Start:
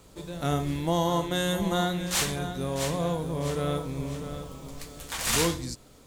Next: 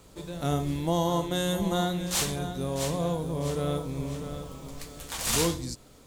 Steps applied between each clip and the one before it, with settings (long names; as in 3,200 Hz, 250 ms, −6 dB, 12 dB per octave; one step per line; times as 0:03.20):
dynamic equaliser 1,800 Hz, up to −5 dB, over −46 dBFS, Q 1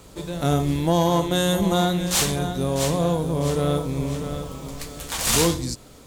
tube saturation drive 18 dB, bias 0.3
level +8 dB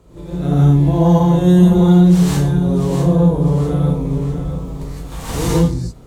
tilt shelving filter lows +7.5 dB, about 1,200 Hz
echo ahead of the sound 56 ms −12 dB
reverb whose tail is shaped and stops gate 190 ms rising, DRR −7.5 dB
level −9 dB